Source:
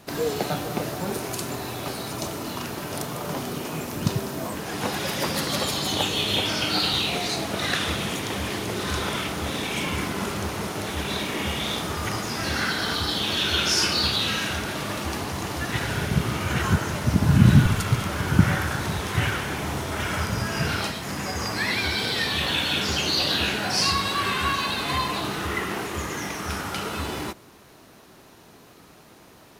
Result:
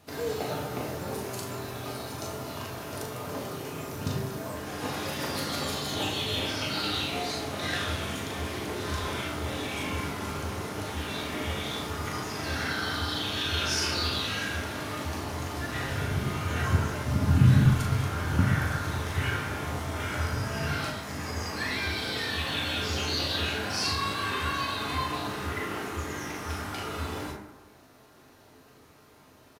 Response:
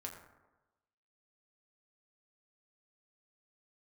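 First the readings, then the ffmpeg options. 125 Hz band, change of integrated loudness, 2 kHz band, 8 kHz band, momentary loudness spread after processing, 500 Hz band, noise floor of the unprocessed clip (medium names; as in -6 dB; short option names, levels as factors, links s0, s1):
-3.0 dB, -5.0 dB, -5.0 dB, -7.0 dB, 9 LU, -4.5 dB, -50 dBFS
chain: -filter_complex "[0:a]asplit=2[s0][s1];[s1]adelay=39,volume=0.501[s2];[s0][s2]amix=inputs=2:normalize=0[s3];[1:a]atrim=start_sample=2205[s4];[s3][s4]afir=irnorm=-1:irlink=0,volume=0.668"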